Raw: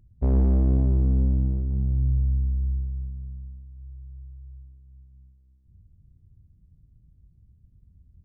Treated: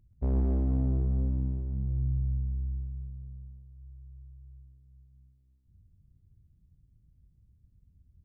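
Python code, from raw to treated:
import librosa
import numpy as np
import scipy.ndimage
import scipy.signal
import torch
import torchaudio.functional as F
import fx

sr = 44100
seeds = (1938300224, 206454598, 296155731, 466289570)

y = fx.echo_thinned(x, sr, ms=131, feedback_pct=60, hz=180.0, wet_db=-6.5)
y = y * 10.0 ** (-6.5 / 20.0)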